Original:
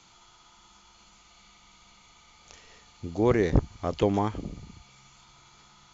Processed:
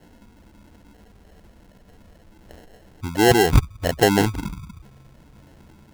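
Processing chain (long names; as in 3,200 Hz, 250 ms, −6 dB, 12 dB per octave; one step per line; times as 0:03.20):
expanding power law on the bin magnitudes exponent 1.9
decimation without filtering 37×
level +7.5 dB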